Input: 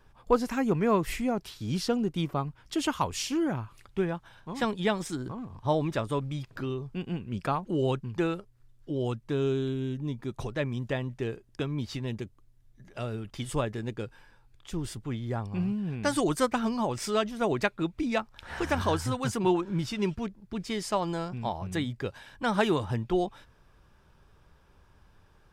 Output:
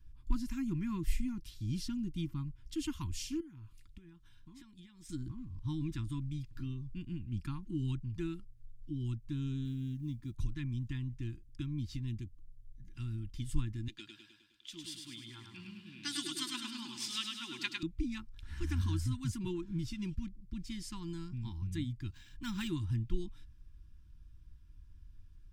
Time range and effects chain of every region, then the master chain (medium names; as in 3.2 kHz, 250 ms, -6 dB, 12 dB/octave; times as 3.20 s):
3.40–5.09 s: bass shelf 190 Hz -7.5 dB + compression 10:1, threshold -41 dBFS
9.65–10.34 s: high-pass 50 Hz 6 dB/octave + companded quantiser 8-bit
13.88–17.83 s: high-pass 430 Hz + peaking EQ 3.5 kHz +12.5 dB 1.3 oct + feedback delay 103 ms, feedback 57%, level -4 dB
22.12–22.68 s: treble shelf 2.5 kHz +9 dB + decimation joined by straight lines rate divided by 4×
whole clip: elliptic band-stop 330–900 Hz, stop band 40 dB; amplifier tone stack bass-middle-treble 10-0-1; comb 2.9 ms, depth 31%; trim +11.5 dB